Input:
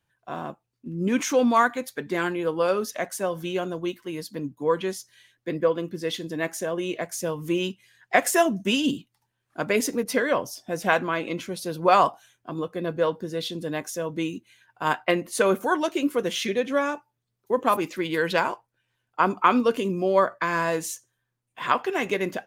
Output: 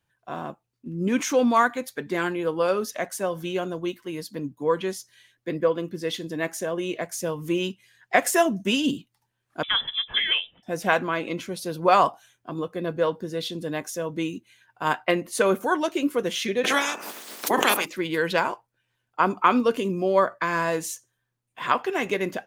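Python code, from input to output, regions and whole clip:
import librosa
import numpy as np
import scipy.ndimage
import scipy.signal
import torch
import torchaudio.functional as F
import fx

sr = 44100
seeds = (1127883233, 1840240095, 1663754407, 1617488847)

y = fx.chain(x, sr, fx.highpass(hz=260.0, slope=6),
    fx.freq_invert(carrier_hz=3700), at=(9.63, 10.63))
y = fx.spec_clip(y, sr, under_db=26, at=(16.63, 17.84), fade=0.02)
y = fx.highpass(y, sr, hz=220.0, slope=24, at=(16.63, 17.84), fade=0.02)
y = fx.pre_swell(y, sr, db_per_s=35.0, at=(16.63, 17.84), fade=0.02)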